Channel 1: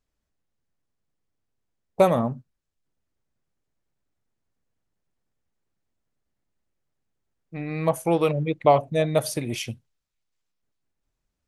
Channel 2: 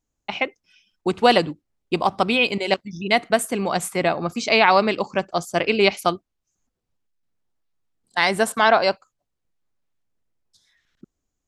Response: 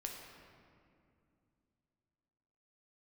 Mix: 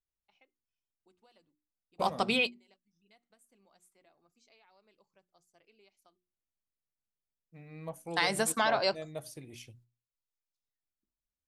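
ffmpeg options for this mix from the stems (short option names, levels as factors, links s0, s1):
-filter_complex "[0:a]bass=f=250:g=3,treble=f=4000:g=3,volume=0.168,asplit=2[s0][s1];[1:a]acompressor=threshold=0.126:ratio=6,bass=f=250:g=0,treble=f=4000:g=8,volume=0.75[s2];[s1]apad=whole_len=505856[s3];[s2][s3]sidechaingate=range=0.0141:threshold=0.00141:ratio=16:detection=peak[s4];[s0][s4]amix=inputs=2:normalize=0,bandreject=f=60:t=h:w=6,bandreject=f=120:t=h:w=6,bandreject=f=180:t=h:w=6,bandreject=f=240:t=h:w=6,bandreject=f=300:t=h:w=6,bandreject=f=360:t=h:w=6,flanger=delay=1.9:depth=2.7:regen=-64:speed=0.2:shape=triangular"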